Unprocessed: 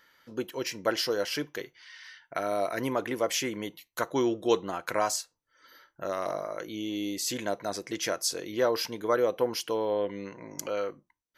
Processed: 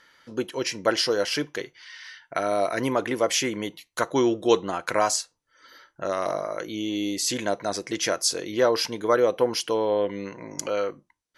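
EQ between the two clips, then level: elliptic low-pass 11000 Hz, stop band 50 dB; +6.0 dB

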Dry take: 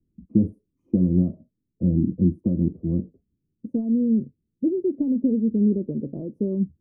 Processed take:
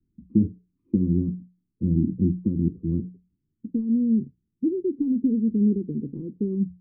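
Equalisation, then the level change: Butterworth band-stop 650 Hz, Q 1.1; air absorption 480 m; notches 60/120/180 Hz; 0.0 dB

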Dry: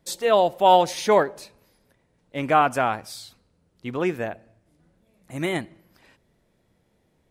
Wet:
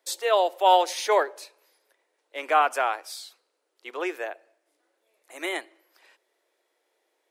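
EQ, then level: steep high-pass 330 Hz 48 dB/oct; low shelf 480 Hz -9 dB; 0.0 dB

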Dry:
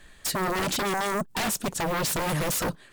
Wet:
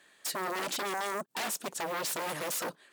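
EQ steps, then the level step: HPF 330 Hz 12 dB/oct; -6.0 dB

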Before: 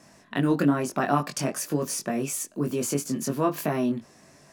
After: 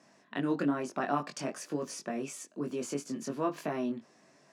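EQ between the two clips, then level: HPF 200 Hz 12 dB/oct; air absorption 93 m; high shelf 8800 Hz +8 dB; -6.5 dB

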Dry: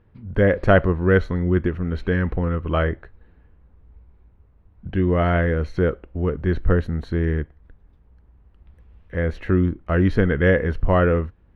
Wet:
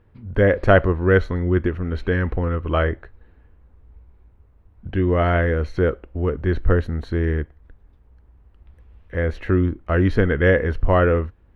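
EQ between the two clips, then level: bell 170 Hz -5.5 dB 0.57 oct; +1.5 dB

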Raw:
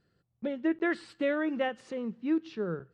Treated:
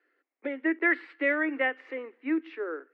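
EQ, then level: Chebyshev high-pass 260 Hz, order 8; synth low-pass 2100 Hz, resonance Q 4.8; 0.0 dB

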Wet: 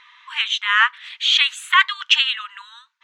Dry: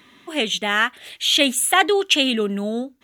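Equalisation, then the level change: brick-wall FIR high-pass 890 Hz; air absorption 160 m; +5.5 dB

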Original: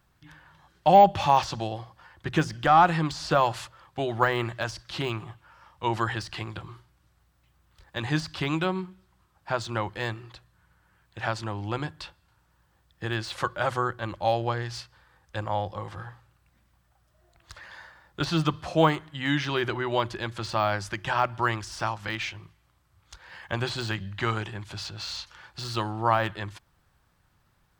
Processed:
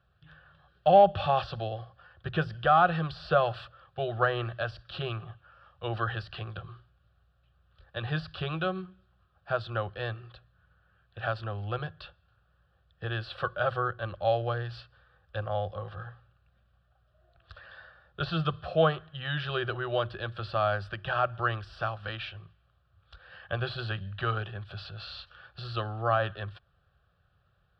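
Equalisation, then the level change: HPF 43 Hz; air absorption 210 m; fixed phaser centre 1400 Hz, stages 8; +1.0 dB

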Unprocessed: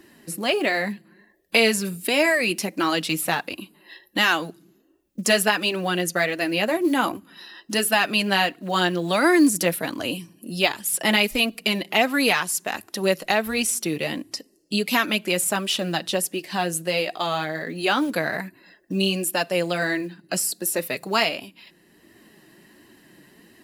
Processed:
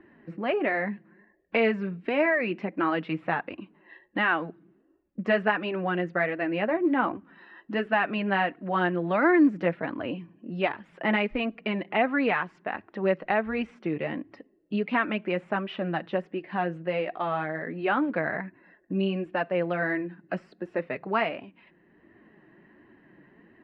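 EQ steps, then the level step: LPF 2100 Hz 24 dB/oct; -3.0 dB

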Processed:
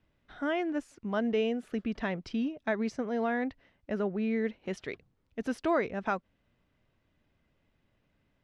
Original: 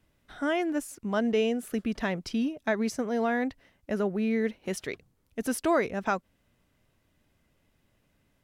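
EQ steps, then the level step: LPF 4000 Hz 12 dB/oct; -3.0 dB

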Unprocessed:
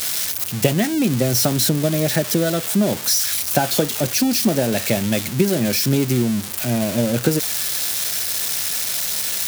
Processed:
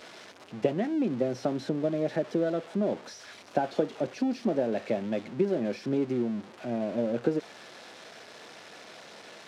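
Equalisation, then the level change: HPF 370 Hz 12 dB/oct; tape spacing loss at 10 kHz 31 dB; tilt shelf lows +5.5 dB, about 740 Hz; -5.5 dB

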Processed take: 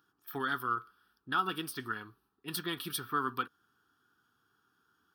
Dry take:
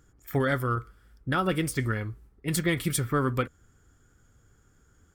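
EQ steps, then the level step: HPF 390 Hz 12 dB/oct; fixed phaser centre 2100 Hz, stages 6; -1.0 dB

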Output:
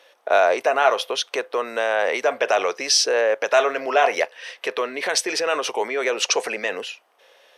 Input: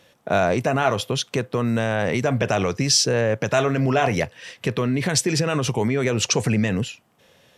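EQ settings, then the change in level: HPF 460 Hz 24 dB/oct; high shelf 5900 Hz -7.5 dB; notch 7300 Hz, Q 6.7; +4.0 dB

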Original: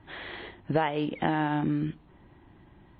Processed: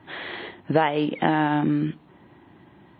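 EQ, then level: HPF 140 Hz 12 dB/oct; +6.0 dB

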